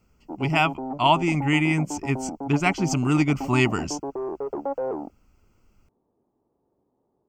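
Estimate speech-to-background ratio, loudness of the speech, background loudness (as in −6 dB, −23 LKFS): 9.5 dB, −23.5 LKFS, −33.0 LKFS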